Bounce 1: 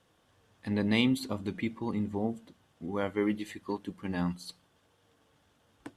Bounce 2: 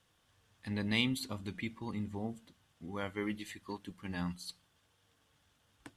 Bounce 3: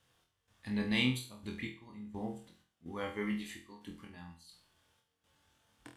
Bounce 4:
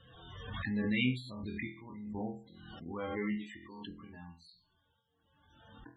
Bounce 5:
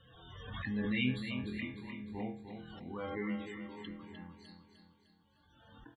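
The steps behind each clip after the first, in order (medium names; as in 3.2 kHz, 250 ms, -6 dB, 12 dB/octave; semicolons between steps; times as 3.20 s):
peaking EQ 410 Hz -9.5 dB 3 oct
trance gate "x.xxx.x..x" 63 bpm -12 dB; on a send: flutter echo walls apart 4.1 m, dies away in 0.38 s; on the sum: trim -2 dB
loudest bins only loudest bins 32; Bessel low-pass 7.1 kHz; swell ahead of each attack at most 39 dB/s
feedback delay 303 ms, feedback 48%, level -8 dB; trim -2 dB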